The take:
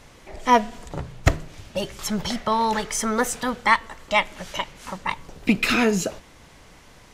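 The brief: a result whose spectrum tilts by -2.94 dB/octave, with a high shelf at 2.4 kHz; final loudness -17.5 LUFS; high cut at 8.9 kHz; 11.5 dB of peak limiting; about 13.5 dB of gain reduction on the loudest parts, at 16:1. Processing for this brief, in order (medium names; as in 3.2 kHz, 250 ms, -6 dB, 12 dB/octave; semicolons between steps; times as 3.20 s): low-pass 8.9 kHz; treble shelf 2.4 kHz +7.5 dB; compression 16:1, threshold -23 dBFS; trim +16 dB; peak limiter -6 dBFS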